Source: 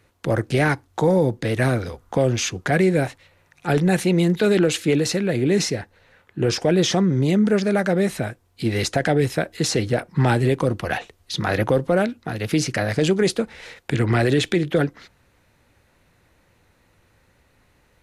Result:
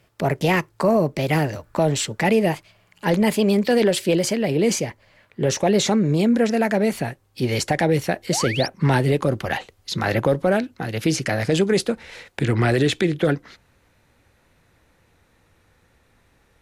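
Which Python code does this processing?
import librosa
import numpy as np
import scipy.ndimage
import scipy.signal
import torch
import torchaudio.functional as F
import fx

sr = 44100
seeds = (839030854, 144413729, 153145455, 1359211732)

y = fx.speed_glide(x, sr, from_pct=123, to_pct=94)
y = fx.spec_paint(y, sr, seeds[0], shape='rise', start_s=8.31, length_s=0.37, low_hz=550.0, high_hz=5900.0, level_db=-29.0)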